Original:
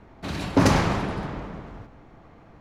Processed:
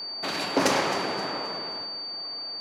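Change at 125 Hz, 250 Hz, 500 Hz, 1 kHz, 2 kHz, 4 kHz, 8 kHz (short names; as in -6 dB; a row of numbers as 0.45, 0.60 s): -17.0, -7.0, 0.0, 0.0, +1.0, +8.5, +2.0 dB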